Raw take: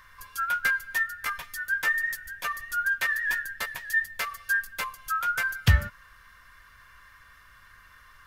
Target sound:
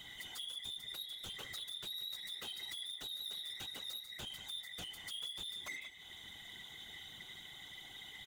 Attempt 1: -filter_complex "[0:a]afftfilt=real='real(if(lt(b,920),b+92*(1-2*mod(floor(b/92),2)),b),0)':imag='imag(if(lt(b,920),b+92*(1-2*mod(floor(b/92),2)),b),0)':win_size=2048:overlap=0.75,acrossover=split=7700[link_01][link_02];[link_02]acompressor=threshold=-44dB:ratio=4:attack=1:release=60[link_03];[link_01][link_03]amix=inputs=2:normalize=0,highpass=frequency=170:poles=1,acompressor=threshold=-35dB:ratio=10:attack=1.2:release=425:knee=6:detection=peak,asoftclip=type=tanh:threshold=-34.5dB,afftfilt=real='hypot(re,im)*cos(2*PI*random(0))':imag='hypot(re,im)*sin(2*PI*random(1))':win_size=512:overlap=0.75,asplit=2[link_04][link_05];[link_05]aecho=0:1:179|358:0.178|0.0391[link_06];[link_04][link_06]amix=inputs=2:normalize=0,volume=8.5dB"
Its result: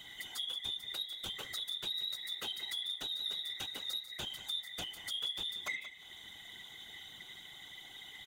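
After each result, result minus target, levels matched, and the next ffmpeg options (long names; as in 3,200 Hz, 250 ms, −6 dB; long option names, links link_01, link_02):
soft clipping: distortion −11 dB; 125 Hz band −3.5 dB
-filter_complex "[0:a]afftfilt=real='real(if(lt(b,920),b+92*(1-2*mod(floor(b/92),2)),b),0)':imag='imag(if(lt(b,920),b+92*(1-2*mod(floor(b/92),2)),b),0)':win_size=2048:overlap=0.75,acrossover=split=7700[link_01][link_02];[link_02]acompressor=threshold=-44dB:ratio=4:attack=1:release=60[link_03];[link_01][link_03]amix=inputs=2:normalize=0,highpass=frequency=170:poles=1,acompressor=threshold=-35dB:ratio=10:attack=1.2:release=425:knee=6:detection=peak,asoftclip=type=tanh:threshold=-45dB,afftfilt=real='hypot(re,im)*cos(2*PI*random(0))':imag='hypot(re,im)*sin(2*PI*random(1))':win_size=512:overlap=0.75,asplit=2[link_04][link_05];[link_05]aecho=0:1:179|358:0.178|0.0391[link_06];[link_04][link_06]amix=inputs=2:normalize=0,volume=8.5dB"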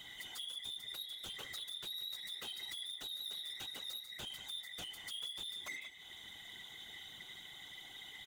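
125 Hz band −3.5 dB
-filter_complex "[0:a]afftfilt=real='real(if(lt(b,920),b+92*(1-2*mod(floor(b/92),2)),b),0)':imag='imag(if(lt(b,920),b+92*(1-2*mod(floor(b/92),2)),b),0)':win_size=2048:overlap=0.75,acrossover=split=7700[link_01][link_02];[link_02]acompressor=threshold=-44dB:ratio=4:attack=1:release=60[link_03];[link_01][link_03]amix=inputs=2:normalize=0,highpass=frequency=65:poles=1,acompressor=threshold=-35dB:ratio=10:attack=1.2:release=425:knee=6:detection=peak,asoftclip=type=tanh:threshold=-45dB,afftfilt=real='hypot(re,im)*cos(2*PI*random(0))':imag='hypot(re,im)*sin(2*PI*random(1))':win_size=512:overlap=0.75,asplit=2[link_04][link_05];[link_05]aecho=0:1:179|358:0.178|0.0391[link_06];[link_04][link_06]amix=inputs=2:normalize=0,volume=8.5dB"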